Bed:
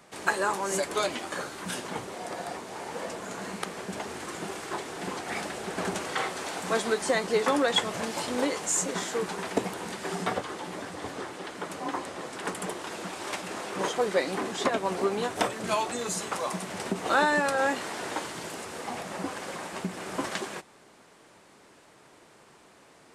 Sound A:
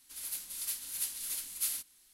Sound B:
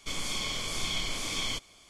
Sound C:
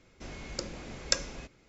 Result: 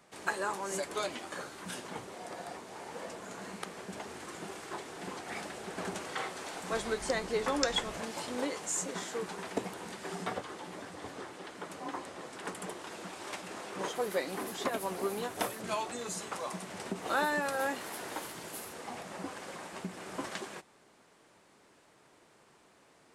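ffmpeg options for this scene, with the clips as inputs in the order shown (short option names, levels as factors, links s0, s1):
-filter_complex "[1:a]asplit=2[s0][s1];[0:a]volume=0.447[s2];[3:a]atrim=end=1.68,asetpts=PTS-STARTPTS,volume=0.501,afade=t=in:d=0.004:c=hsin,afade=t=out:st=1.676:d=0.004:c=hsin,adelay=6510[s3];[s0]atrim=end=2.13,asetpts=PTS-STARTPTS,volume=0.251,afade=t=in:d=0.004:c=hsin,afade=t=out:st=2.126:d=0.004:c=hsin,adelay=13790[s4];[s1]atrim=end=2.13,asetpts=PTS-STARTPTS,volume=0.224,afade=t=in:d=0.004:c=hsin,afade=t=out:st=2.126:d=0.004:c=hsin,adelay=16920[s5];[s2][s3][s4][s5]amix=inputs=4:normalize=0"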